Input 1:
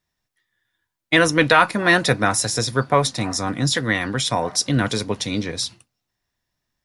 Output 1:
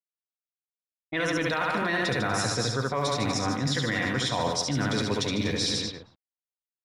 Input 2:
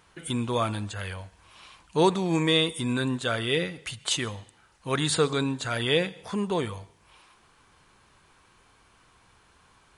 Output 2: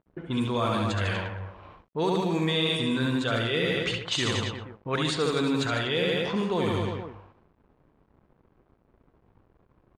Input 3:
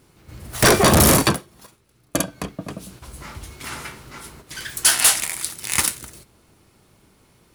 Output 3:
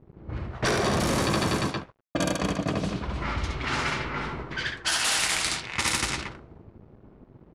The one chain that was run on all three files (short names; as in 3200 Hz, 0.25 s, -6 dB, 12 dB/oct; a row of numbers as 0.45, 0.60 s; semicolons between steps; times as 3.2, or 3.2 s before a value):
LPF 6000 Hz 12 dB/oct; on a send: reverse bouncing-ball echo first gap 70 ms, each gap 1.15×, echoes 5; on the sum: limiter -9.5 dBFS; reverse; compressor 6:1, threshold -30 dBFS; reverse; sample gate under -53 dBFS; low-pass opened by the level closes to 310 Hz, open at -28.5 dBFS; mismatched tape noise reduction encoder only; match loudness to -27 LUFS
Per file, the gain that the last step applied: +5.5, +6.5, +7.0 dB